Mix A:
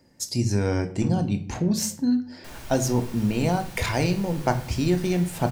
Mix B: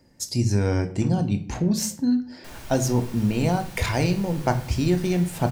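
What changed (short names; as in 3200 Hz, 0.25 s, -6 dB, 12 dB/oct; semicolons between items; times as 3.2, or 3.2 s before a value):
speech: add low shelf 81 Hz +7 dB; first sound: add tilt +2 dB/oct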